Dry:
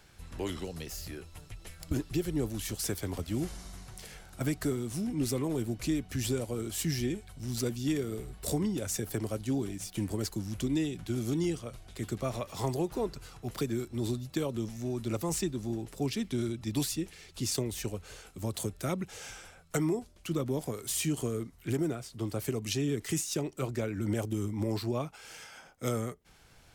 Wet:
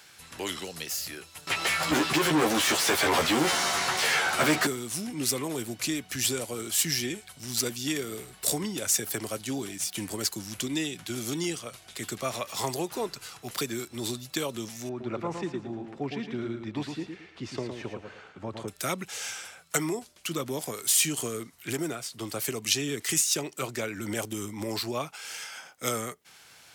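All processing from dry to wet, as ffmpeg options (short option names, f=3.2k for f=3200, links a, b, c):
-filter_complex "[0:a]asettb=1/sr,asplit=3[a][b][c];[a]atrim=end=1.474[d];[b]atrim=start=1.47:end=4.67,asetpts=PTS-STARTPTS,afade=t=in:d=0.004:c=qsin,afade=t=out:st=3.196:d=0.004:c=qsin,asplit=2[e][f];[f]highpass=f=720:p=1,volume=35dB,asoftclip=type=tanh:threshold=-18dB[g];[e][g]amix=inputs=2:normalize=0,lowpass=f=1.2k:p=1,volume=-6dB,asplit=2[h][i];[i]adelay=13,volume=-3dB[j];[h][j]amix=inputs=2:normalize=0,atrim=end_sample=141120[k];[c]atrim=start=4.666[l];[d][k]acrossfade=d=0.004:c1=hsin:c2=qsin[m];[m][l]acrossfade=d=0.004:c1=qsin:c2=hsin,asettb=1/sr,asplit=3[n][o][p];[n]atrim=end=14.894[q];[o]atrim=start=14.89:end=18.68,asetpts=PTS-STARTPTS,afade=t=in:d=0.004:c=qsin,afade=t=out:st=3.786:d=0.004:c=qsin,lowpass=1.6k,aecho=1:1:112|224|336:0.501|0.135|0.0365,atrim=end_sample=167139[r];[p]atrim=start=18.676[s];[q][r]acrossfade=d=0.004:c1=hsin:c2=qsin[t];[t][s]acrossfade=d=0.004:c1=qsin:c2=hsin,highpass=120,tiltshelf=f=730:g=-7,volume=3.5dB"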